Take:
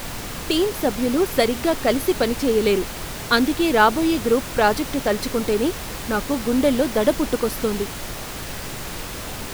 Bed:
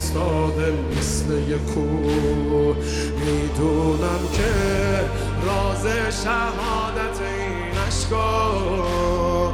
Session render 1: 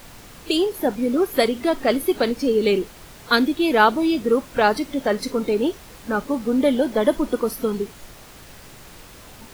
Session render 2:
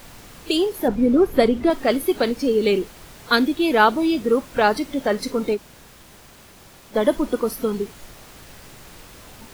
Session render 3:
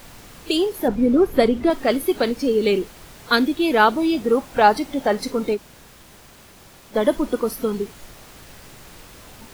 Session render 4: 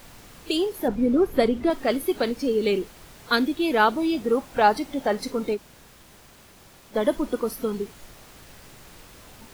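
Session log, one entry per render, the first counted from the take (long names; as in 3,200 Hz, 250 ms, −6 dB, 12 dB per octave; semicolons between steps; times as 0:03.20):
noise reduction from a noise print 12 dB
0:00.88–0:01.70: spectral tilt −2.5 dB per octave; 0:05.56–0:06.93: fill with room tone, crossfade 0.06 s
0:04.13–0:05.30: parametric band 790 Hz +7.5 dB 0.32 octaves
level −4 dB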